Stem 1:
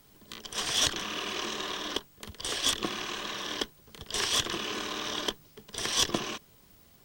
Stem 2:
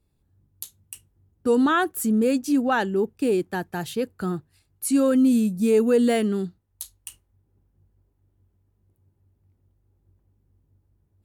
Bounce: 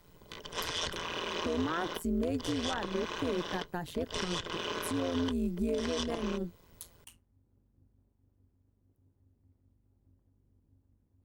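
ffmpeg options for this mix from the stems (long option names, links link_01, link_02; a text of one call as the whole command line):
ffmpeg -i stem1.wav -i stem2.wav -filter_complex "[0:a]acrossover=split=8400[link_01][link_02];[link_02]acompressor=threshold=-57dB:ratio=4:attack=1:release=60[link_03];[link_01][link_03]amix=inputs=2:normalize=0,aecho=1:1:2:0.73,volume=3dB[link_04];[1:a]acompressor=threshold=-24dB:ratio=2.5,volume=-0.5dB[link_05];[link_04][link_05]amix=inputs=2:normalize=0,highshelf=frequency=2600:gain=-9,tremolo=f=170:d=0.824,alimiter=limit=-22dB:level=0:latency=1:release=207" out.wav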